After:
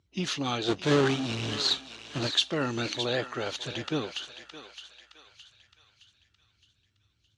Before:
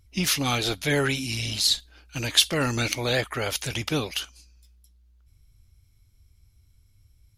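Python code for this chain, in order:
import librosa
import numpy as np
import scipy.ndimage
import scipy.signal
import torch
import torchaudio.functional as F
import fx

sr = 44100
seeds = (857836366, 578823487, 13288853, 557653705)

p1 = fx.halfwave_hold(x, sr, at=(0.68, 2.27))
p2 = fx.cabinet(p1, sr, low_hz=140.0, low_slope=12, high_hz=6000.0, hz=(350.0, 2200.0, 5200.0), db=(4, -8, -9))
p3 = p2 + fx.echo_thinned(p2, sr, ms=616, feedback_pct=49, hz=980.0, wet_db=-9.0, dry=0)
y = p3 * librosa.db_to_amplitude(-4.0)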